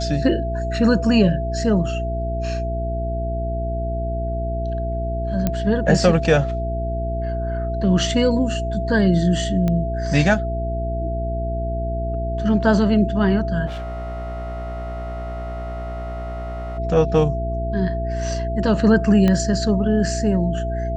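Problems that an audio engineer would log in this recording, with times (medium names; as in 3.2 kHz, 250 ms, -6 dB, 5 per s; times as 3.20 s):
hum 60 Hz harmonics 7 -25 dBFS
whine 670 Hz -26 dBFS
5.47 s: pop -7 dBFS
9.68 s: pop -11 dBFS
13.66–16.79 s: clipped -26.5 dBFS
19.28 s: pop -8 dBFS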